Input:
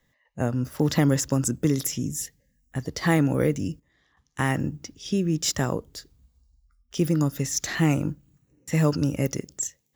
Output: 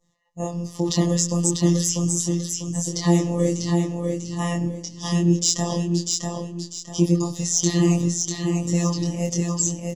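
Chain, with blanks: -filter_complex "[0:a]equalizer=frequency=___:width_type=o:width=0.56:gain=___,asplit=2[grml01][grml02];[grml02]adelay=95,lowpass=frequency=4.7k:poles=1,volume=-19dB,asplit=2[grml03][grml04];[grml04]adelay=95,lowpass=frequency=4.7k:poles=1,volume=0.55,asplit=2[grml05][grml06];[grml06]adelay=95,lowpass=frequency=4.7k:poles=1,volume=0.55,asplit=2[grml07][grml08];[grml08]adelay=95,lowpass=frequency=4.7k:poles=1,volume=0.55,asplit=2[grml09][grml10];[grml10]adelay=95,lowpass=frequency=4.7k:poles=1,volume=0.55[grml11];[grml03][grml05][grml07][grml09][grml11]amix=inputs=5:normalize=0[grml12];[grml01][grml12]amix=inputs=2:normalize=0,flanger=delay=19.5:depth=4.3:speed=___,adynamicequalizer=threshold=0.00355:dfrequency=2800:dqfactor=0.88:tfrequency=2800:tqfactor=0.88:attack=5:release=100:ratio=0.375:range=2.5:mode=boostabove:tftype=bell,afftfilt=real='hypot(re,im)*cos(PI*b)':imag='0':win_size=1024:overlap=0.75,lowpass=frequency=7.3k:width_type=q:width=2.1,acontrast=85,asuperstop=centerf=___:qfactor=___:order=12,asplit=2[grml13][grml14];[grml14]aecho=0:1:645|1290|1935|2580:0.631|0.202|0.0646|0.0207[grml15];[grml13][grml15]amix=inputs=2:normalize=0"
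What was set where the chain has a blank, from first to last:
2.2k, -14, 0.48, 1500, 3.2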